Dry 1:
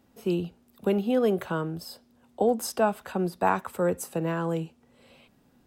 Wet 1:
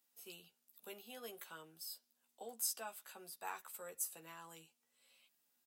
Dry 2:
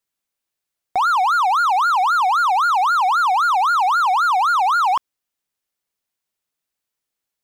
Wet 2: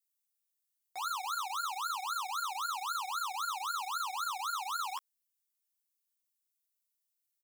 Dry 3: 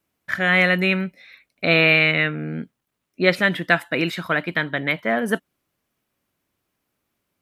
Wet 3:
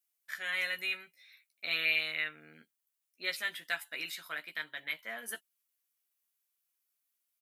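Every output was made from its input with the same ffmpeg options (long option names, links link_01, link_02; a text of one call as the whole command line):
ffmpeg -i in.wav -filter_complex "[0:a]aderivative,asplit=2[link_01][link_02];[link_02]adelay=13,volume=-4.5dB[link_03];[link_01][link_03]amix=inputs=2:normalize=0,volume=-5.5dB" out.wav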